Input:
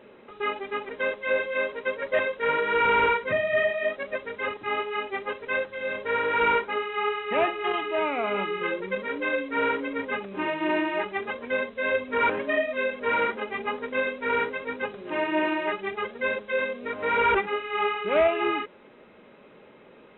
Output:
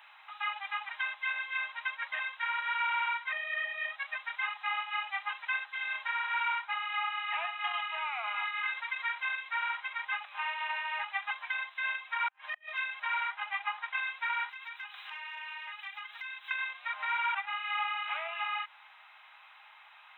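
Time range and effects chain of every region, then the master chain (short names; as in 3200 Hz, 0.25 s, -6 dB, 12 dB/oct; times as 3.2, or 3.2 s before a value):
8.34–9.22 comb 4.3 ms, depth 38% + fast leveller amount 50%
12.28–12.78 compressor 10:1, threshold -29 dBFS + flipped gate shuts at -24 dBFS, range -32 dB
13.29–13.98 HPF 440 Hz + air absorption 120 m
14.49–16.51 HPF 630 Hz + tilt +3.5 dB/oct + compressor, threshold -43 dBFS
whole clip: high shelf 2500 Hz +8 dB; compressor 4:1, threshold -30 dBFS; steep high-pass 750 Hz 72 dB/oct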